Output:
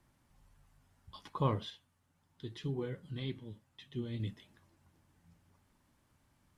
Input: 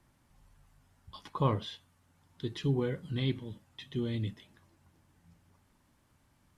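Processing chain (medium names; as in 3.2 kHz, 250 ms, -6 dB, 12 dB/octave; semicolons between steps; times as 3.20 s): 1.70–4.20 s: flange 1.9 Hz, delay 4.4 ms, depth 5.6 ms, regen +69%; trim -3 dB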